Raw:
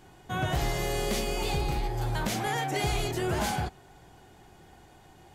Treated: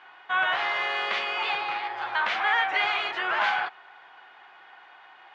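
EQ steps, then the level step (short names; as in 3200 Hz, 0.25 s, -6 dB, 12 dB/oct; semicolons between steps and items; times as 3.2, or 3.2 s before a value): resonant high-pass 1200 Hz, resonance Q 1.6; LPF 3200 Hz 24 dB/oct; +8.5 dB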